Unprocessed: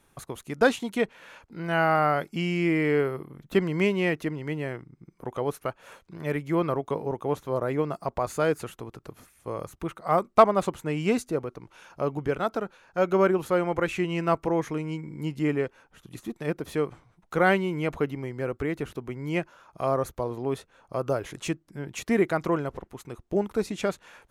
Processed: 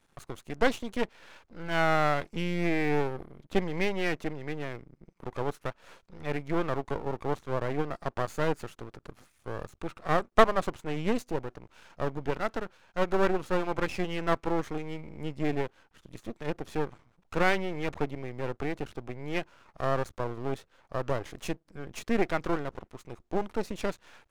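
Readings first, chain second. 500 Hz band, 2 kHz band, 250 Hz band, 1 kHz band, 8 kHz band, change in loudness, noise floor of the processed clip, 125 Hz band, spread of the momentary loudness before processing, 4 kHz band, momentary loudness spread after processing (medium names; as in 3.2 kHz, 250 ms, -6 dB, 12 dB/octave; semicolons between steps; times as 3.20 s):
-5.0 dB, -2.5 dB, -5.0 dB, -3.5 dB, -5.0 dB, -4.0 dB, -69 dBFS, -4.0 dB, 14 LU, -1.0 dB, 14 LU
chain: low-pass 7.8 kHz 12 dB/octave; half-wave rectifier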